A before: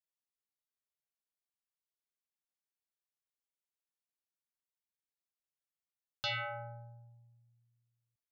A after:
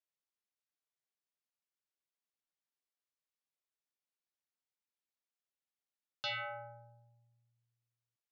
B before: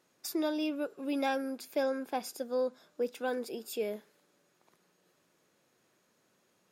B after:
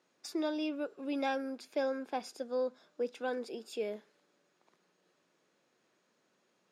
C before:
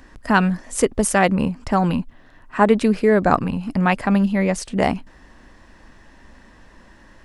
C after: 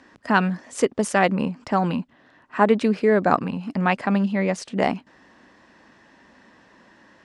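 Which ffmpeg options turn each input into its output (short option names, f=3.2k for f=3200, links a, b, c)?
-af "highpass=170,lowpass=6.4k,volume=-2dB"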